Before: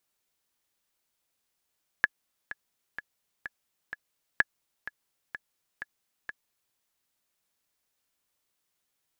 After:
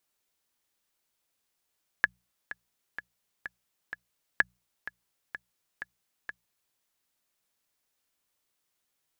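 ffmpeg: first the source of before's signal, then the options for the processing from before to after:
-f lavfi -i "aevalsrc='pow(10,(-7.5-15.5*gte(mod(t,5*60/127),60/127))/20)*sin(2*PI*1700*mod(t,60/127))*exp(-6.91*mod(t,60/127)/0.03)':duration=4.72:sample_rate=44100"
-af "bandreject=frequency=60:width_type=h:width=6,bandreject=frequency=120:width_type=h:width=6,bandreject=frequency=180:width_type=h:width=6"

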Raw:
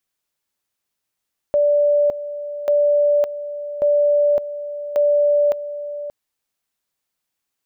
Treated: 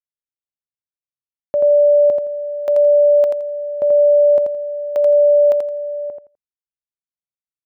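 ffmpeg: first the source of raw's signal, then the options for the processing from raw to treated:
-f lavfi -i "aevalsrc='pow(10,(-12.5-13*gte(mod(t,1.14),0.56))/20)*sin(2*PI*584*t)':duration=4.56:sample_rate=44100"
-af "highpass=75,anlmdn=15.8,aecho=1:1:84|168|252:0.596|0.119|0.0238"

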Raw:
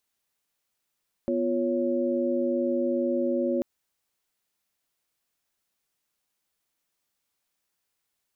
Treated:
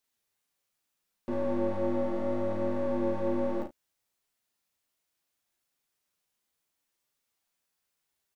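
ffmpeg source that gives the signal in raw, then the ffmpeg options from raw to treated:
-f lavfi -i "aevalsrc='0.0422*(sin(2*PI*246.94*t)+sin(2*PI*349.23*t)+sin(2*PI*554.37*t))':duration=2.34:sample_rate=44100"
-filter_complex "[0:a]aeval=exprs='clip(val(0),-1,0.0237)':channel_layout=same,flanger=delay=6.9:depth=7.1:regen=-4:speed=0.7:shape=triangular,asplit=2[link_01][link_02];[link_02]aecho=0:1:38|73:0.596|0.188[link_03];[link_01][link_03]amix=inputs=2:normalize=0"

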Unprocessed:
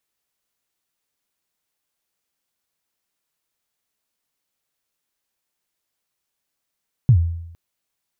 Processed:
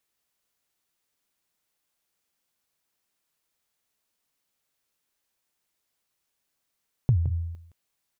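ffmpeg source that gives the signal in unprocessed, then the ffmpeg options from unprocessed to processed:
-f lavfi -i "aevalsrc='0.473*pow(10,-3*t/0.81)*sin(2*PI*(140*0.082/log(84/140)*(exp(log(84/140)*min(t,0.082)/0.082)-1)+84*max(t-0.082,0)))':duration=0.46:sample_rate=44100"
-af "acompressor=threshold=-25dB:ratio=2,aecho=1:1:167:0.266"

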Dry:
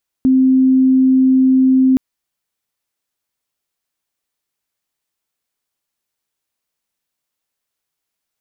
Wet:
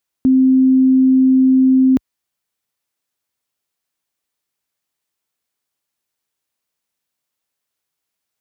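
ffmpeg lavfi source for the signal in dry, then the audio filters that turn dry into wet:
-f lavfi -i "aevalsrc='0.398*sin(2*PI*261*t)':duration=1.72:sample_rate=44100"
-af "highpass=47"

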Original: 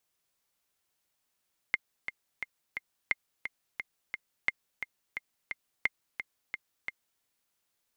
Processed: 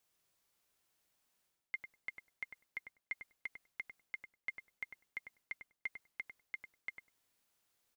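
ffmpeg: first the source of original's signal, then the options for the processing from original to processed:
-f lavfi -i "aevalsrc='pow(10,(-12.5-9*gte(mod(t,4*60/175),60/175))/20)*sin(2*PI*2100*mod(t,60/175))*exp(-6.91*mod(t,60/175)/0.03)':duration=5.48:sample_rate=44100"
-filter_complex "[0:a]areverse,acompressor=threshold=-40dB:ratio=6,areverse,asplit=2[link_01][link_02];[link_02]adelay=99,lowpass=frequency=990:poles=1,volume=-3.5dB,asplit=2[link_03][link_04];[link_04]adelay=99,lowpass=frequency=990:poles=1,volume=0.15,asplit=2[link_05][link_06];[link_06]adelay=99,lowpass=frequency=990:poles=1,volume=0.15[link_07];[link_01][link_03][link_05][link_07]amix=inputs=4:normalize=0"

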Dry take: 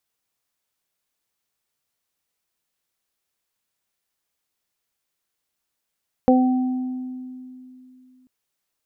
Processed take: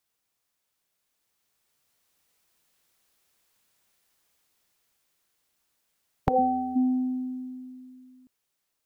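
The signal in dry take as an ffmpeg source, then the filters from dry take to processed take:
-f lavfi -i "aevalsrc='0.237*pow(10,-3*t/2.93)*sin(2*PI*255*t)+0.251*pow(10,-3*t/0.34)*sin(2*PI*510*t)+0.119*pow(10,-3*t/1.31)*sin(2*PI*765*t)':duration=1.99:sample_rate=44100"
-af "dynaudnorm=framelen=200:gausssize=17:maxgain=9dB,afftfilt=real='re*lt(hypot(re,im),1.26)':imag='im*lt(hypot(re,im),1.26)':win_size=1024:overlap=0.75"

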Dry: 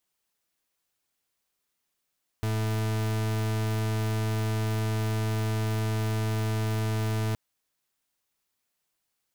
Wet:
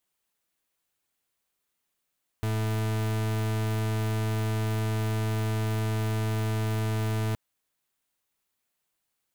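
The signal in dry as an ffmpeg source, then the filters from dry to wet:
-f lavfi -i "aevalsrc='0.0422*(2*lt(mod(109*t,1),0.4)-1)':duration=4.92:sample_rate=44100"
-af "equalizer=frequency=5300:width=2.4:gain=-3.5"

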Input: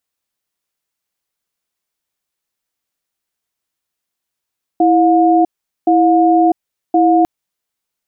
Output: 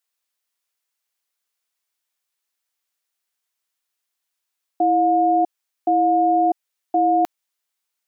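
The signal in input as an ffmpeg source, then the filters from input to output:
-f lavfi -i "aevalsrc='0.299*(sin(2*PI*329*t)+sin(2*PI*716*t))*clip(min(mod(t,1.07),0.65-mod(t,1.07))/0.005,0,1)':duration=2.45:sample_rate=44100"
-af "highpass=frequency=940:poles=1"

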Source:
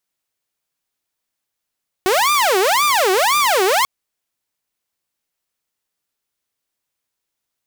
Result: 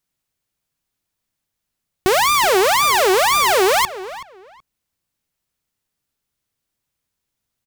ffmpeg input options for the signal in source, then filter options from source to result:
-f lavfi -i "aevalsrc='0.299*(2*mod((784*t-416/(2*PI*1.9)*sin(2*PI*1.9*t)),1)-1)':duration=1.79:sample_rate=44100"
-filter_complex "[0:a]bass=frequency=250:gain=11,treble=frequency=4000:gain=0,asplit=2[link_01][link_02];[link_02]adelay=376,lowpass=frequency=3100:poles=1,volume=-15dB,asplit=2[link_03][link_04];[link_04]adelay=376,lowpass=frequency=3100:poles=1,volume=0.21[link_05];[link_01][link_03][link_05]amix=inputs=3:normalize=0"

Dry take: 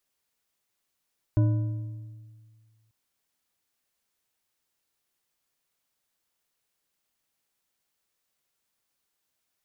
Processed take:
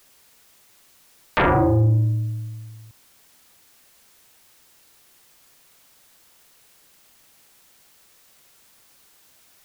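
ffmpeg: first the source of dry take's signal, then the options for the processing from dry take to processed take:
-f lavfi -i "aevalsrc='0.141*pow(10,-3*t/1.85)*sin(2*PI*111*t)+0.0501*pow(10,-3*t/1.365)*sin(2*PI*306*t)+0.0178*pow(10,-3*t/1.115)*sin(2*PI*599.8*t)+0.00631*pow(10,-3*t/0.959)*sin(2*PI*991.6*t)+0.00224*pow(10,-3*t/0.85)*sin(2*PI*1480.7*t)':duration=1.54:sample_rate=44100"
-af "aeval=exprs='0.2*sin(PI/2*10*val(0)/0.2)':channel_layout=same"

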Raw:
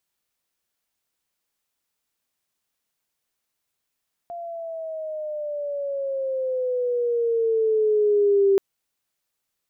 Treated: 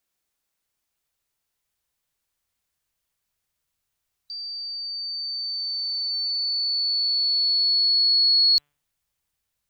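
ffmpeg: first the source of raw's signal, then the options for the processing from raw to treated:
-f lavfi -i "aevalsrc='pow(10,(-14+17*(t/4.28-1))/20)*sin(2*PI*694*4.28/(-10*log(2)/12)*(exp(-10*log(2)/12*t/4.28)-1))':duration=4.28:sample_rate=44100"
-af "afftfilt=real='real(if(lt(b,736),b+184*(1-2*mod(floor(b/184),2)),b),0)':imag='imag(if(lt(b,736),b+184*(1-2*mod(floor(b/184),2)),b),0)':win_size=2048:overlap=0.75,bandreject=frequency=145.9:width_type=h:width=4,bandreject=frequency=291.8:width_type=h:width=4,bandreject=frequency=437.7:width_type=h:width=4,bandreject=frequency=583.6:width_type=h:width=4,bandreject=frequency=729.5:width_type=h:width=4,bandreject=frequency=875.4:width_type=h:width=4,bandreject=frequency=1021.3:width_type=h:width=4,bandreject=frequency=1167.2:width_type=h:width=4,bandreject=frequency=1313.1:width_type=h:width=4,bandreject=frequency=1459:width_type=h:width=4,bandreject=frequency=1604.9:width_type=h:width=4,bandreject=frequency=1750.8:width_type=h:width=4,bandreject=frequency=1896.7:width_type=h:width=4,bandreject=frequency=2042.6:width_type=h:width=4,bandreject=frequency=2188.5:width_type=h:width=4,bandreject=frequency=2334.4:width_type=h:width=4,bandreject=frequency=2480.3:width_type=h:width=4,bandreject=frequency=2626.2:width_type=h:width=4,bandreject=frequency=2772.1:width_type=h:width=4,bandreject=frequency=2918:width_type=h:width=4,bandreject=frequency=3063.9:width_type=h:width=4,bandreject=frequency=3209.8:width_type=h:width=4,bandreject=frequency=3355.7:width_type=h:width=4,bandreject=frequency=3501.6:width_type=h:width=4,asubboost=boost=4.5:cutoff=130"

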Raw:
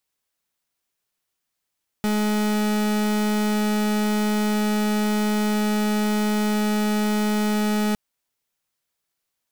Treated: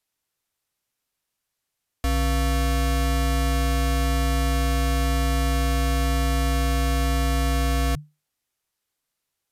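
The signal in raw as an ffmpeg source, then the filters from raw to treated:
-f lavfi -i "aevalsrc='0.0841*(2*lt(mod(211*t,1),0.39)-1)':duration=5.91:sample_rate=44100"
-af "afreqshift=-150,aresample=32000,aresample=44100"

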